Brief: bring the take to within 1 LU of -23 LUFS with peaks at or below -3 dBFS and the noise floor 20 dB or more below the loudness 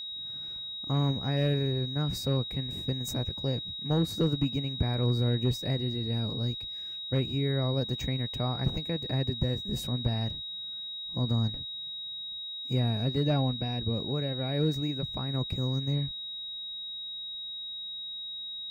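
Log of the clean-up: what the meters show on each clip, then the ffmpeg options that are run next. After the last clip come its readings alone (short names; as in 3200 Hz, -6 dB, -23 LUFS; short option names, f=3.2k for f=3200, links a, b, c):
steady tone 3800 Hz; tone level -36 dBFS; loudness -31.0 LUFS; peak -16.5 dBFS; loudness target -23.0 LUFS
-> -af "bandreject=f=3.8k:w=30"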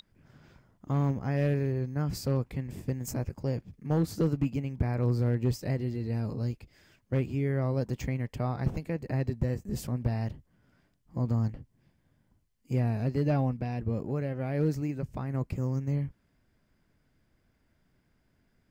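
steady tone none; loudness -31.5 LUFS; peak -17.5 dBFS; loudness target -23.0 LUFS
-> -af "volume=8.5dB"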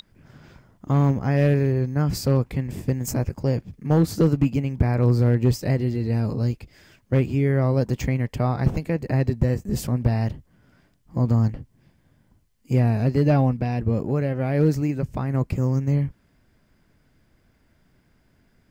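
loudness -23.0 LUFS; peak -9.0 dBFS; noise floor -63 dBFS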